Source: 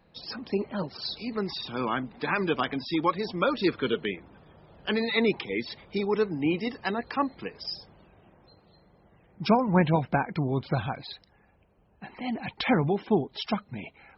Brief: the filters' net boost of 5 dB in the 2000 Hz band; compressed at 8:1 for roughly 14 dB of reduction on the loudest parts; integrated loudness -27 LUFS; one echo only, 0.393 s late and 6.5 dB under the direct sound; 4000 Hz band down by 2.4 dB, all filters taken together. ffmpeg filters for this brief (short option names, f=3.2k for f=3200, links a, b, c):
-af "equalizer=f=2k:t=o:g=7.5,equalizer=f=4k:t=o:g=-5.5,acompressor=threshold=-32dB:ratio=8,aecho=1:1:393:0.473,volume=9.5dB"